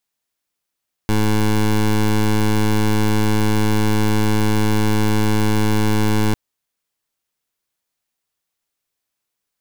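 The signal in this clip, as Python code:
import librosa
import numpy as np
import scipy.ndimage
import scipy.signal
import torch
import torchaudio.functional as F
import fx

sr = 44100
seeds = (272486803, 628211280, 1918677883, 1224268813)

y = fx.pulse(sr, length_s=5.25, hz=107.0, level_db=-15.5, duty_pct=17)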